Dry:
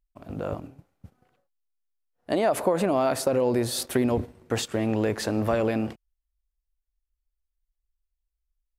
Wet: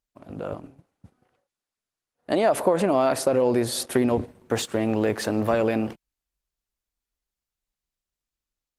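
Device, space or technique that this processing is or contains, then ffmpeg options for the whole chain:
video call: -af "highpass=f=130:p=1,dynaudnorm=f=410:g=7:m=3dB" -ar 48000 -c:a libopus -b:a 20k

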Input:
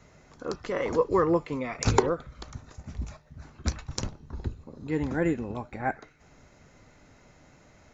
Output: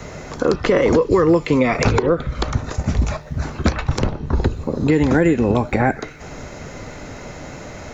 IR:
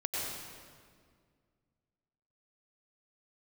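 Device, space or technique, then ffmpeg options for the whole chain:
mastering chain: -filter_complex "[0:a]equalizer=f=490:t=o:w=1:g=3.5,acrossover=split=380|1800|4000[a][b][c][d];[a]acompressor=threshold=-32dB:ratio=4[e];[b]acompressor=threshold=-38dB:ratio=4[f];[c]acompressor=threshold=-45dB:ratio=4[g];[d]acompressor=threshold=-59dB:ratio=4[h];[e][f][g][h]amix=inputs=4:normalize=0,acompressor=threshold=-35dB:ratio=2,alimiter=level_in=26dB:limit=-1dB:release=50:level=0:latency=1,volume=-4.5dB"

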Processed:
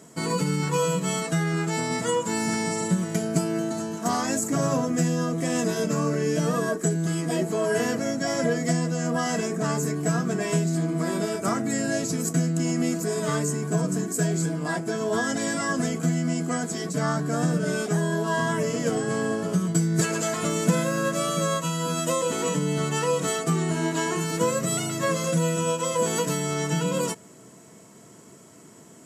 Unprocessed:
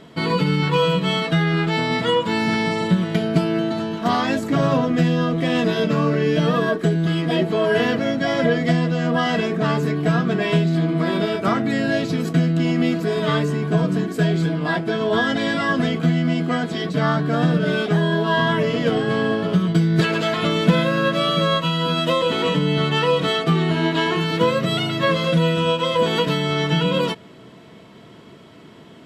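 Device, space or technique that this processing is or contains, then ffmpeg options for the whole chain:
budget condenser microphone: -af "highpass=92,highshelf=f=5.1k:t=q:w=3:g=13.5,volume=-5.5dB"

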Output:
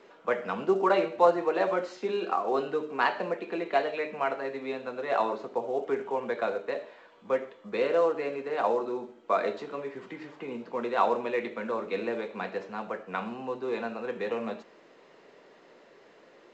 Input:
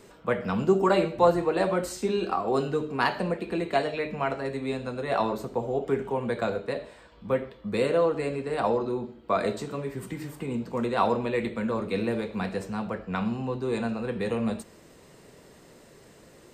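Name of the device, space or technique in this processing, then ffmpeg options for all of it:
telephone: -af "highpass=380,lowpass=3.1k" -ar 16000 -c:a pcm_mulaw

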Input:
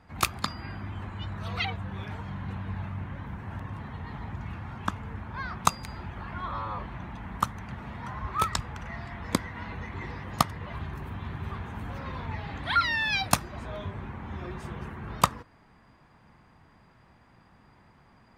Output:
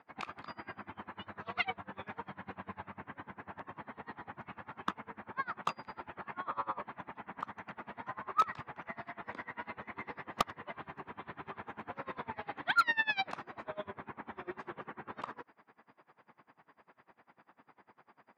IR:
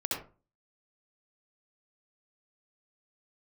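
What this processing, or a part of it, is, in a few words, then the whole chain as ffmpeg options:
helicopter radio: -af "highpass=330,lowpass=2.5k,aeval=exprs='val(0)*pow(10,-26*(0.5-0.5*cos(2*PI*10*n/s))/20)':c=same,asoftclip=type=hard:threshold=-23.5dB,volume=4dB"

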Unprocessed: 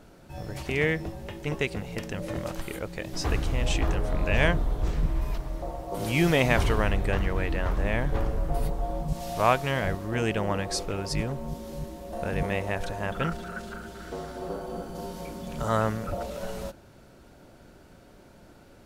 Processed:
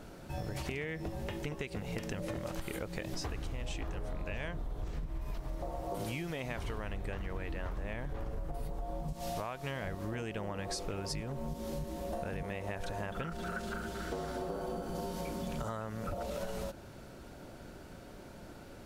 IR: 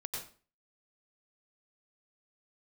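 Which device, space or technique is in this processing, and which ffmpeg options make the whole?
serial compression, peaks first: -af "acompressor=threshold=-31dB:ratio=6,acompressor=threshold=-37dB:ratio=6,volume=2.5dB"

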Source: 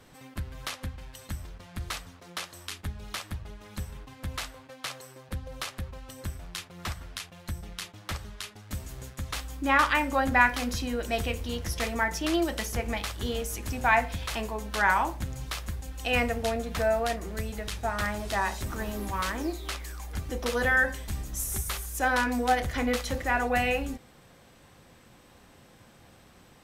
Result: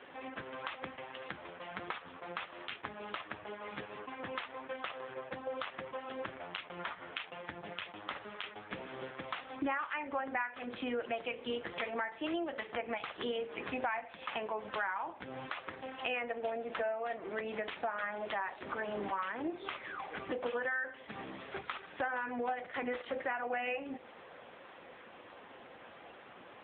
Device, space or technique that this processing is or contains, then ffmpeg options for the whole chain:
voicemail: -af "highpass=380,lowpass=3.2k,acompressor=threshold=-42dB:ratio=10,volume=9.5dB" -ar 8000 -c:a libopencore_amrnb -b:a 6700

